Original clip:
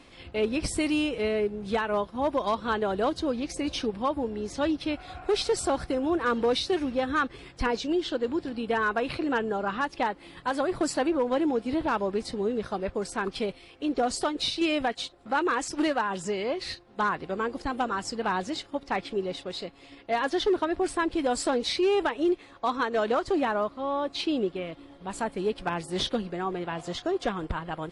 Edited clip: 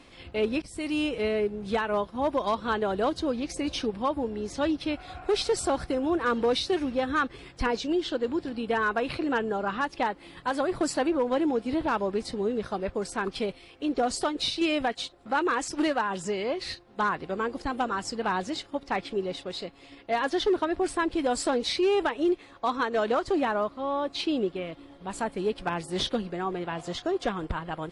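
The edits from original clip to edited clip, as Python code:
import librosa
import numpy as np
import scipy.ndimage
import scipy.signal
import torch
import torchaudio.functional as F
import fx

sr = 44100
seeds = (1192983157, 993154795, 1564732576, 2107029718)

y = fx.edit(x, sr, fx.fade_in_from(start_s=0.62, length_s=0.44, floor_db=-23.5), tone=tone)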